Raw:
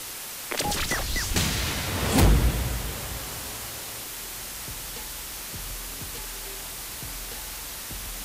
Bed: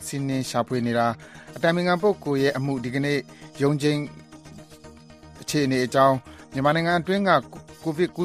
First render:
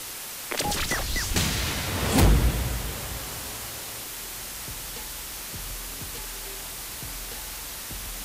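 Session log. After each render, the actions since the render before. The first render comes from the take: nothing audible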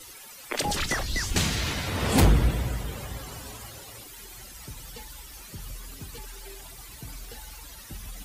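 denoiser 14 dB, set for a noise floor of -37 dBFS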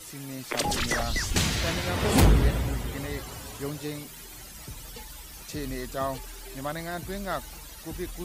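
add bed -13 dB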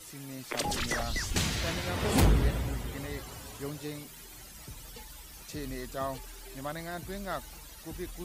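gain -4.5 dB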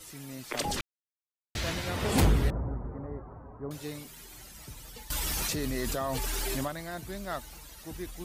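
0.81–1.55 mute; 2.5–3.71 inverse Chebyshev low-pass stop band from 3100 Hz, stop band 50 dB; 5.1–6.68 fast leveller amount 100%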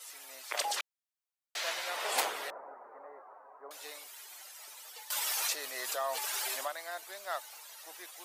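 HPF 600 Hz 24 dB/oct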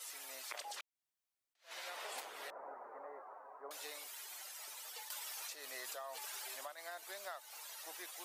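compressor 16:1, threshold -43 dBFS, peak gain reduction 18.5 dB; attack slew limiter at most 240 dB/s

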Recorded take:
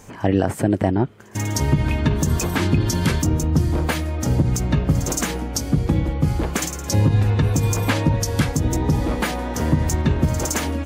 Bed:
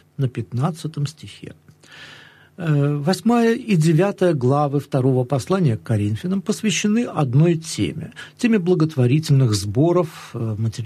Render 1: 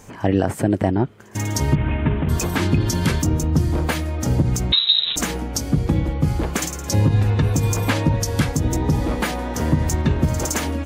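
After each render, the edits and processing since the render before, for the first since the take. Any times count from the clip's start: 1.75–2.29 CVSD 16 kbps; 4.72–5.16 inverted band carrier 3900 Hz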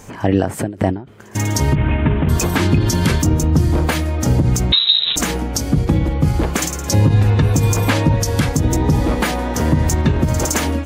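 in parallel at -2 dB: limiter -12 dBFS, peak gain reduction 7 dB; on the sum: ending taper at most 140 dB/s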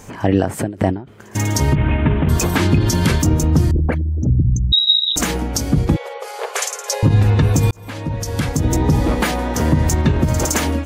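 3.71–5.16 formant sharpening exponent 3; 5.96–7.03 brick-wall FIR band-pass 390–13000 Hz; 7.71–8.76 fade in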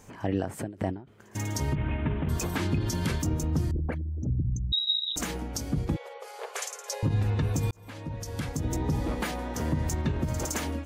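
gain -13 dB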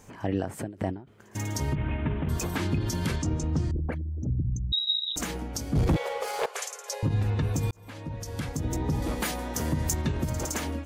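3.16–3.75 LPF 7800 Hz 24 dB/oct; 5.75–6.46 sample leveller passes 3; 9.02–10.3 high shelf 5000 Hz +10.5 dB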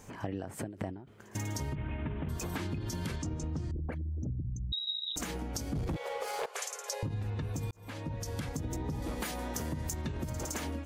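compressor, threshold -33 dBFS, peak gain reduction 12 dB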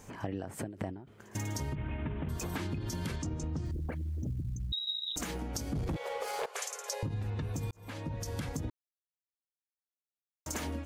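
3.65–5.39 companded quantiser 8-bit; 8.7–10.46 mute

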